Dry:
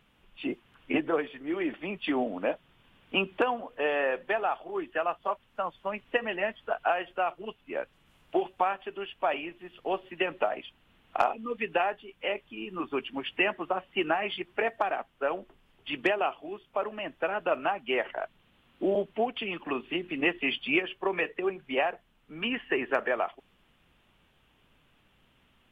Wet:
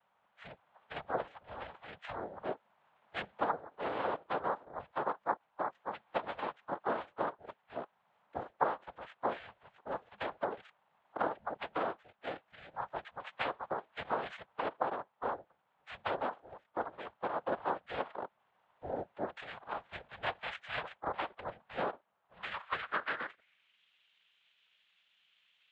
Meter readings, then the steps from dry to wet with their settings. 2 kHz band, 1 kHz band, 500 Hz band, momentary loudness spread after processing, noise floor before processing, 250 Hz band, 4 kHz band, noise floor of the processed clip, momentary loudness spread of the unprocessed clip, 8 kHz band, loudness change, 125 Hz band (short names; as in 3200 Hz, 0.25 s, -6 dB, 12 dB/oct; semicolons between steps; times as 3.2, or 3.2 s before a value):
-10.5 dB, -5.0 dB, -9.5 dB, 12 LU, -66 dBFS, -13.5 dB, -12.0 dB, -76 dBFS, 9 LU, n/a, -8.5 dB, -5.0 dB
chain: noise vocoder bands 6; frequency shift -320 Hz; band-pass sweep 870 Hz -> 3000 Hz, 22.3–23.83; gain +2.5 dB